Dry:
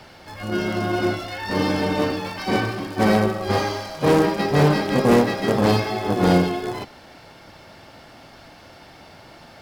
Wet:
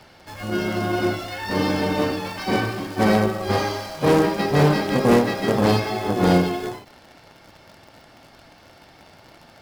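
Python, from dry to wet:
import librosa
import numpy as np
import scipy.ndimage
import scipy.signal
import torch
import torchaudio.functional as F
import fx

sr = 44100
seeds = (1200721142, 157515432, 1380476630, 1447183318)

p1 = fx.quant_dither(x, sr, seeds[0], bits=6, dither='none')
p2 = x + (p1 * 10.0 ** (-5.0 / 20.0))
p3 = fx.end_taper(p2, sr, db_per_s=120.0)
y = p3 * 10.0 ** (-4.0 / 20.0)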